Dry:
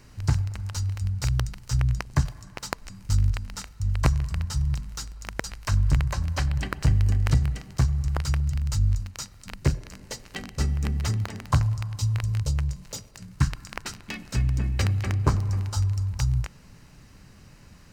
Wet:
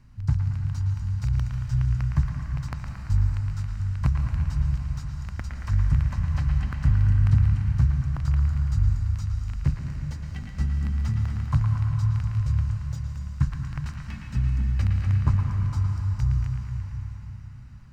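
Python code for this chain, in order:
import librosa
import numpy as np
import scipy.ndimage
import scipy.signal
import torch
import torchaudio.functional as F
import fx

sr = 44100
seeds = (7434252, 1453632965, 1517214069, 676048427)

y = fx.curve_eq(x, sr, hz=(110.0, 230.0, 410.0, 1000.0, 8200.0), db=(0, -3, -18, -8, -17))
y = fx.echo_banded(y, sr, ms=113, feedback_pct=74, hz=1700.0, wet_db=-4.5)
y = fx.rev_plate(y, sr, seeds[0], rt60_s=4.7, hf_ratio=0.9, predelay_ms=120, drr_db=3.0)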